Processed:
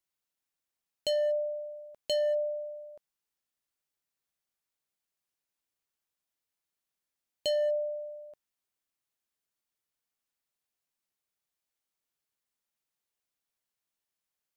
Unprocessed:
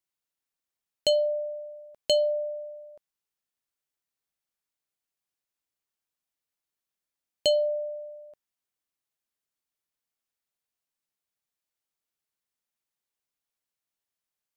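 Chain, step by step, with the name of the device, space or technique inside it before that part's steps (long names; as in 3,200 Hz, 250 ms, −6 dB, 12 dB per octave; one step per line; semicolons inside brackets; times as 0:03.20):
limiter into clipper (brickwall limiter −23.5 dBFS, peak gain reduction 7.5 dB; hard clipping −25 dBFS, distortion −24 dB)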